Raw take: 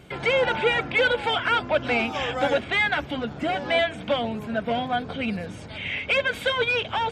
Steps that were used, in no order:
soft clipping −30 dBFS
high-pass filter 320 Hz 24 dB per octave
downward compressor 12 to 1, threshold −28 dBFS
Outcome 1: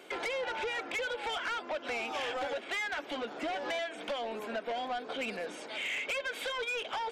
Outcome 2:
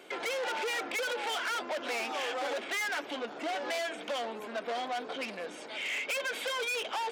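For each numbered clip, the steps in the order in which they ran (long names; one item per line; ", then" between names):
high-pass filter, then downward compressor, then soft clipping
soft clipping, then high-pass filter, then downward compressor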